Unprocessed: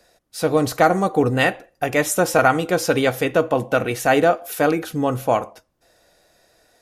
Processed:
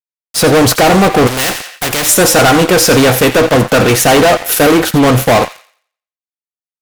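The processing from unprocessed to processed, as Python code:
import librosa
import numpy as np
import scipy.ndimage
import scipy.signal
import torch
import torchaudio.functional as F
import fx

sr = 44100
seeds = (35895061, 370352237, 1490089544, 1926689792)

y = fx.fuzz(x, sr, gain_db=29.0, gate_db=-36.0)
y = fx.echo_wet_highpass(y, sr, ms=87, feedback_pct=32, hz=1600.0, wet_db=-12.0)
y = fx.spectral_comp(y, sr, ratio=2.0, at=(1.27, 2.09))
y = y * librosa.db_to_amplitude(7.5)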